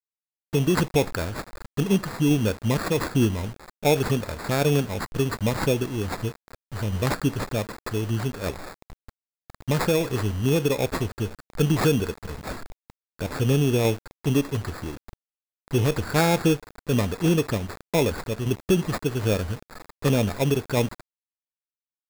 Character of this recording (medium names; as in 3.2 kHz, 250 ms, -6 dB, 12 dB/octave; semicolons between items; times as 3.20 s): a quantiser's noise floor 6-bit, dither none; tremolo saw down 1.3 Hz, depth 30%; aliases and images of a low sample rate 3 kHz, jitter 0%